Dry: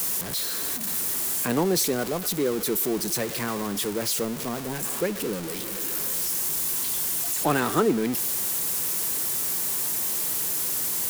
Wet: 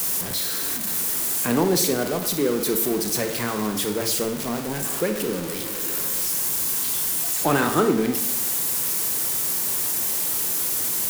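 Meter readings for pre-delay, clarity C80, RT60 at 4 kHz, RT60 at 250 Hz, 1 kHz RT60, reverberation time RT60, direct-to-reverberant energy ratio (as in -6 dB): 24 ms, 12.0 dB, 0.55 s, 0.85 s, 0.70 s, 0.70 s, 6.0 dB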